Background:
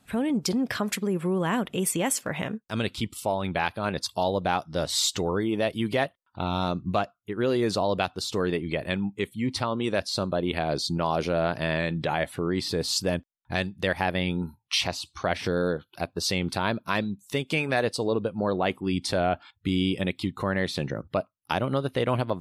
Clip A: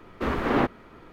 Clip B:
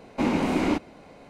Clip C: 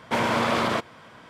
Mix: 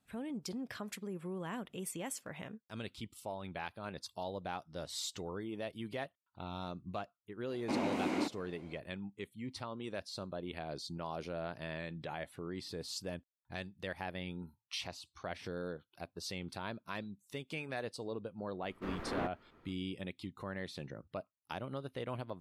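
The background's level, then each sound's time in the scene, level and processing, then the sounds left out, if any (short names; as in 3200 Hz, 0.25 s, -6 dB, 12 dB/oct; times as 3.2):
background -15.5 dB
7.5 add B -10 dB + HPF 180 Hz
18.61 add A -15.5 dB
not used: C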